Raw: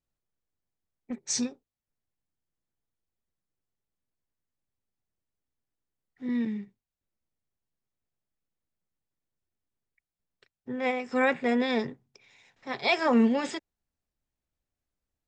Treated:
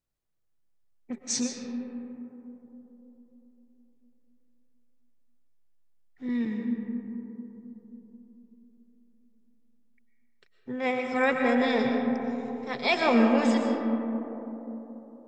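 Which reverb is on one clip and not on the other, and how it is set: algorithmic reverb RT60 3.8 s, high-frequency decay 0.25×, pre-delay 80 ms, DRR 2 dB

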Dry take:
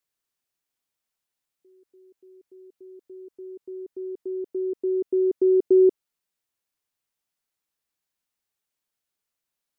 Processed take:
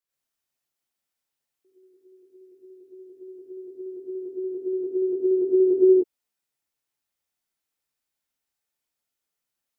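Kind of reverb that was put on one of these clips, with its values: gated-style reverb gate 150 ms rising, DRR -7 dB; trim -7.5 dB

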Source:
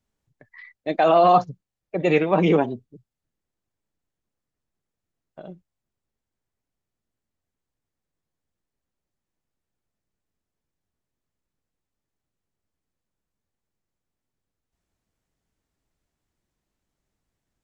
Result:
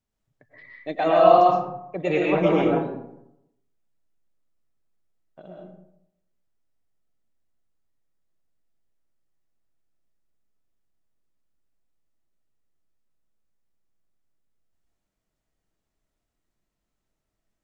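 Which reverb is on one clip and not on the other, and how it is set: algorithmic reverb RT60 0.81 s, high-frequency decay 0.5×, pre-delay 80 ms, DRR -2.5 dB; trim -5.5 dB

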